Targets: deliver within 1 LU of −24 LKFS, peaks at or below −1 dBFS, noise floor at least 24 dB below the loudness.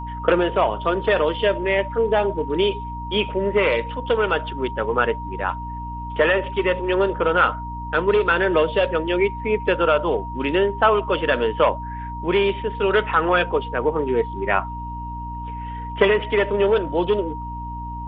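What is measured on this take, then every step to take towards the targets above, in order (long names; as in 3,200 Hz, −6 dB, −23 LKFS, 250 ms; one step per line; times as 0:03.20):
mains hum 60 Hz; hum harmonics up to 300 Hz; level of the hum −30 dBFS; interfering tone 940 Hz; level of the tone −31 dBFS; integrated loudness −21.0 LKFS; sample peak −1.5 dBFS; target loudness −24.0 LKFS
→ mains-hum notches 60/120/180/240/300 Hz
notch filter 940 Hz, Q 30
level −3 dB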